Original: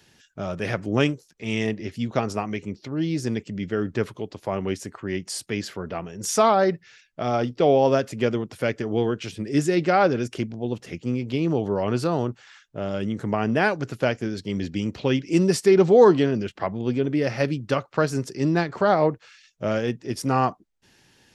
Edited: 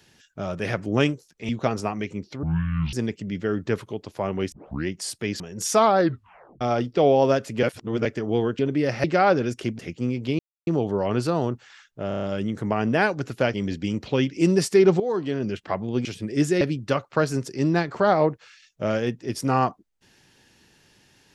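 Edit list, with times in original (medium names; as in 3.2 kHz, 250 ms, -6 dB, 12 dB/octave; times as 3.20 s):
1.49–2.01 s: delete
2.95–3.21 s: speed 52%
4.80 s: tape start 0.35 s
5.68–6.03 s: delete
6.61 s: tape stop 0.63 s
8.26–8.68 s: reverse
9.22–9.78 s: swap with 16.97–17.42 s
10.53–10.84 s: delete
11.44 s: insert silence 0.28 s
12.85 s: stutter 0.03 s, 6 plays
14.16–14.46 s: delete
15.92–16.44 s: fade in quadratic, from -14 dB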